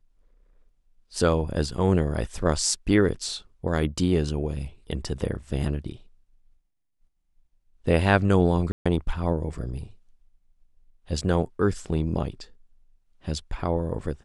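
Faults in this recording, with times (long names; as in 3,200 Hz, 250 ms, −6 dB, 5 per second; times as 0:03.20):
0:08.72–0:08.86: drop-out 136 ms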